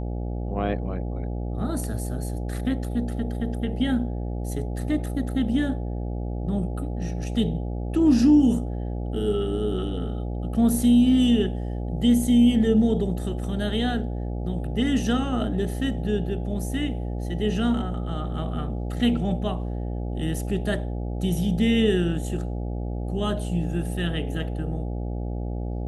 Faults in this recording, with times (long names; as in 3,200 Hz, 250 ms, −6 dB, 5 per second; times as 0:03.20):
mains buzz 60 Hz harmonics 14 −29 dBFS